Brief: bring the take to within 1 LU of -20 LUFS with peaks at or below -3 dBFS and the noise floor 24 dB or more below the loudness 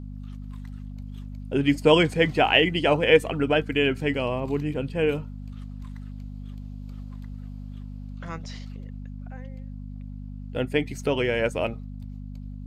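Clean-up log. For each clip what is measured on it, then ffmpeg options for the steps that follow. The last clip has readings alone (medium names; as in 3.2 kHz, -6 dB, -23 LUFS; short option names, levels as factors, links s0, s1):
hum 50 Hz; highest harmonic 250 Hz; hum level -34 dBFS; loudness -23.0 LUFS; peak level -3.0 dBFS; loudness target -20.0 LUFS
-> -af "bandreject=f=50:t=h:w=4,bandreject=f=100:t=h:w=4,bandreject=f=150:t=h:w=4,bandreject=f=200:t=h:w=4,bandreject=f=250:t=h:w=4"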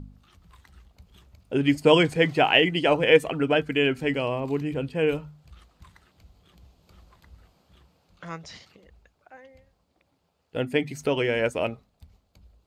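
hum not found; loudness -23.0 LUFS; peak level -3.0 dBFS; loudness target -20.0 LUFS
-> -af "volume=1.41,alimiter=limit=0.708:level=0:latency=1"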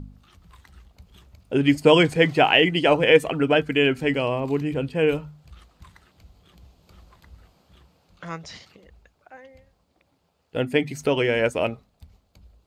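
loudness -20.5 LUFS; peak level -3.0 dBFS; noise floor -68 dBFS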